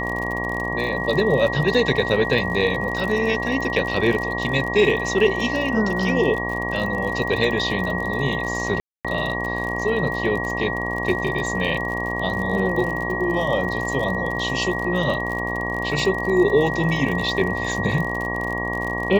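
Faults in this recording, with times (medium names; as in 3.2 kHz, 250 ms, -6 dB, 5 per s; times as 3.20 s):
buzz 60 Hz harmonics 19 -28 dBFS
crackle 51 per s -27 dBFS
whine 1.9 kHz -26 dBFS
8.80–9.05 s: dropout 246 ms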